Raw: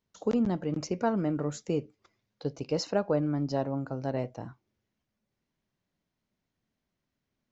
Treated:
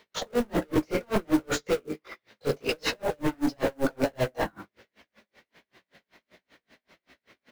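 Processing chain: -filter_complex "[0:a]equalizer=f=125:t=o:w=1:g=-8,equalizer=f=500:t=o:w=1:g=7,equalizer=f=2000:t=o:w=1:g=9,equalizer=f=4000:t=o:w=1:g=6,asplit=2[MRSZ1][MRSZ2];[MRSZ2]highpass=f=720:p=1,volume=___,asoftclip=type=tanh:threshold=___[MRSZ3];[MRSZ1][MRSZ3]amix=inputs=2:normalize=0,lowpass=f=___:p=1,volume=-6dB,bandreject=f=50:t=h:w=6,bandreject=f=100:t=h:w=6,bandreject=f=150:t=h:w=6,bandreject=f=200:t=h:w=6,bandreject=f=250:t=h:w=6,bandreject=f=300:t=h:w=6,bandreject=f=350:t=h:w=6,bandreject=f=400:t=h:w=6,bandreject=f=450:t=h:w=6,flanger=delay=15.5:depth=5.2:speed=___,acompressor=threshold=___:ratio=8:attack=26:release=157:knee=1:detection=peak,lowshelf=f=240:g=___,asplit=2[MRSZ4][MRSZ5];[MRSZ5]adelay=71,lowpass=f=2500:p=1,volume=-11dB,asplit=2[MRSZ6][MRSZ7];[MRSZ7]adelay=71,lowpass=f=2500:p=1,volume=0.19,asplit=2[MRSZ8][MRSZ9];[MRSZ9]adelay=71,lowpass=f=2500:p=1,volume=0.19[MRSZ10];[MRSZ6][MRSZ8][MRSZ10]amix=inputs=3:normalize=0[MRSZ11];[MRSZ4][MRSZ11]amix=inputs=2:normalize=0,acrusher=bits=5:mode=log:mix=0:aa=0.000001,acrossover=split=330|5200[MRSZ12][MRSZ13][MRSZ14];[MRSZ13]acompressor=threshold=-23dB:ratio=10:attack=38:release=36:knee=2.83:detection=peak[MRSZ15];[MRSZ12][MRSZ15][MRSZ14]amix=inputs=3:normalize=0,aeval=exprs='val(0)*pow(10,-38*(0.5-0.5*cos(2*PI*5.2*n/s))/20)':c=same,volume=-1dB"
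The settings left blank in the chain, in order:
39dB, -9dB, 2800, 1.4, -21dB, 12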